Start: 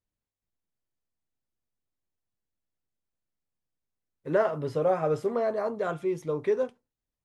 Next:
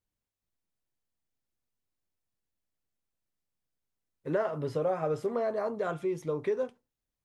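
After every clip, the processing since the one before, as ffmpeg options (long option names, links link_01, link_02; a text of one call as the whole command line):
ffmpeg -i in.wav -af "acompressor=threshold=-29dB:ratio=2" out.wav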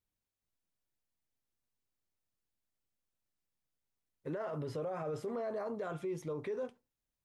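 ffmpeg -i in.wav -af "alimiter=level_in=5dB:limit=-24dB:level=0:latency=1:release=21,volume=-5dB,volume=-2.5dB" out.wav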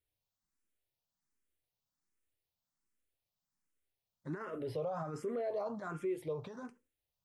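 ffmpeg -i in.wav -filter_complex "[0:a]asplit=2[link_01][link_02];[link_02]afreqshift=1.3[link_03];[link_01][link_03]amix=inputs=2:normalize=1,volume=2.5dB" out.wav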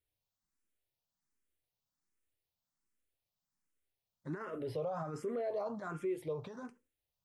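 ffmpeg -i in.wav -af anull out.wav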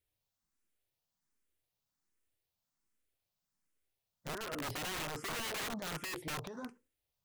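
ffmpeg -i in.wav -af "aeval=exprs='(mod(66.8*val(0)+1,2)-1)/66.8':channel_layout=same,volume=2dB" out.wav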